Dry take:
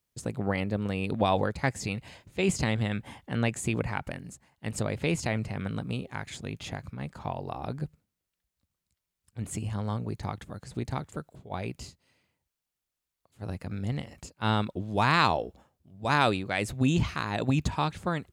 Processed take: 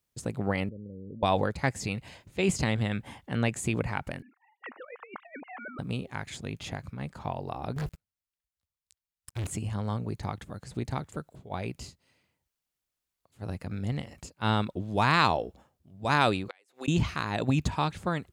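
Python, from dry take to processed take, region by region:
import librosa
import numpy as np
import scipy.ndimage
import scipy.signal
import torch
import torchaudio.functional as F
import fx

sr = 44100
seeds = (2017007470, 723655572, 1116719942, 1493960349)

y = fx.chain(x, sr, fx.level_steps(step_db=21),
    fx.steep_lowpass(hz=560.0, slope=72), at=(0.69, 1.23))
y = fx.chain(y, sr, fx.sine_speech(),
    fx.bandpass_q(hz=1200.0, q=1.7),
    fx.over_compress(threshold_db=-42.0, ratio=-0.5), at=(4.22, 5.79))
y = fx.chain(y, sr, fx.peak_eq(hz=270.0, db=-12.5, octaves=1.7),
    fx.leveller(passes=5), at=(7.76, 9.47))
y = fx.chain(y, sr, fx.highpass(hz=420.0, slope=24),
    fx.notch(hz=620.0, q=5.2),
    fx.gate_flip(shuts_db=-26.0, range_db=-33), at=(16.48, 16.88))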